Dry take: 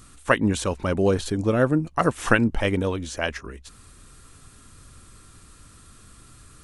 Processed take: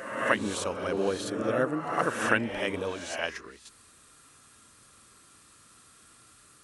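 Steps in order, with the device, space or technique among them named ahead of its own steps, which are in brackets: ghost voice (reverse; reverb RT60 1.2 s, pre-delay 22 ms, DRR 2.5 dB; reverse; HPF 470 Hz 6 dB/oct); gain -5 dB

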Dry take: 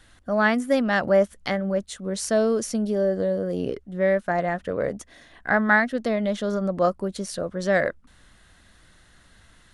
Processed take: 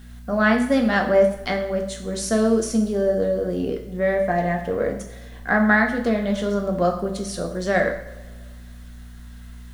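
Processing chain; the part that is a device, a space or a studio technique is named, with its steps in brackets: 4.13–4.72 notch 1400 Hz, Q 7.6; video cassette with head-switching buzz (buzz 60 Hz, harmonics 4, -45 dBFS -4 dB/oct; white noise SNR 38 dB); two-slope reverb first 0.55 s, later 1.8 s, from -17 dB, DRR 2 dB

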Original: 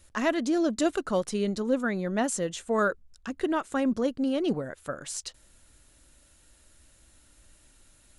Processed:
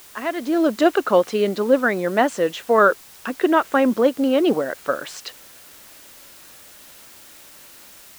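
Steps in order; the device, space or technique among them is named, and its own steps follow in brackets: dictaphone (BPF 340–3000 Hz; AGC gain up to 13 dB; wow and flutter; white noise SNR 24 dB)

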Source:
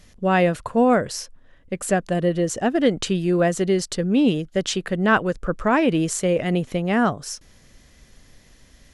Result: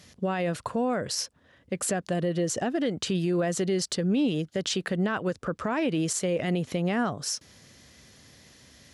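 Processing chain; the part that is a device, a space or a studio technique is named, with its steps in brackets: broadcast voice chain (HPF 76 Hz 24 dB/oct; de-esser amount 35%; compressor 5:1, threshold -21 dBFS, peak gain reduction 9 dB; bell 4600 Hz +4 dB 1 oct; limiter -18.5 dBFS, peak gain reduction 8 dB)

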